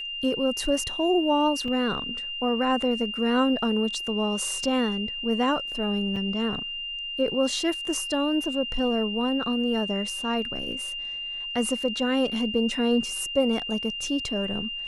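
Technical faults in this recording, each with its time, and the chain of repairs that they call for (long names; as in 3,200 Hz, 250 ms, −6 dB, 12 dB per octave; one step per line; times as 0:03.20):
whistle 2,800 Hz −31 dBFS
0:01.68: drop-out 2.1 ms
0:06.16: drop-out 4.6 ms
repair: notch filter 2,800 Hz, Q 30
repair the gap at 0:01.68, 2.1 ms
repair the gap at 0:06.16, 4.6 ms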